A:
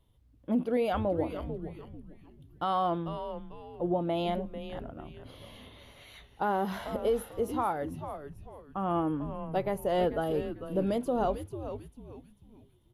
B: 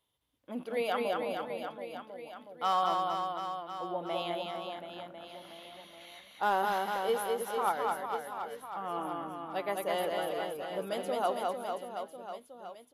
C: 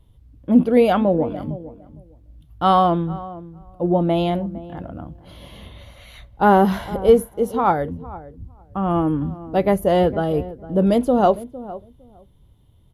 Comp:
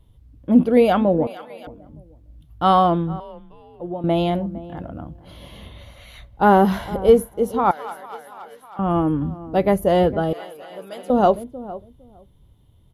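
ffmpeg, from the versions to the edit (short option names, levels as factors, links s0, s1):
-filter_complex "[1:a]asplit=3[s0][s1][s2];[2:a]asplit=5[s3][s4][s5][s6][s7];[s3]atrim=end=1.272[s8];[s0]atrim=start=1.268:end=1.672[s9];[s4]atrim=start=1.668:end=3.202[s10];[0:a]atrim=start=3.198:end=4.042[s11];[s5]atrim=start=4.038:end=7.712[s12];[s1]atrim=start=7.708:end=8.792[s13];[s6]atrim=start=8.788:end=10.332[s14];[s2]atrim=start=10.328:end=11.102[s15];[s7]atrim=start=11.098[s16];[s8][s9]acrossfade=d=0.004:c1=hsin:c2=hsin[s17];[s17][s10]acrossfade=d=0.004:c1=hsin:c2=hsin[s18];[s18][s11]acrossfade=d=0.004:c1=hsin:c2=hsin[s19];[s19][s12]acrossfade=d=0.004:c1=hsin:c2=hsin[s20];[s20][s13]acrossfade=d=0.004:c1=hsin:c2=hsin[s21];[s21][s14]acrossfade=d=0.004:c1=hsin:c2=hsin[s22];[s22][s15]acrossfade=d=0.004:c1=hsin:c2=hsin[s23];[s23][s16]acrossfade=d=0.004:c1=hsin:c2=hsin"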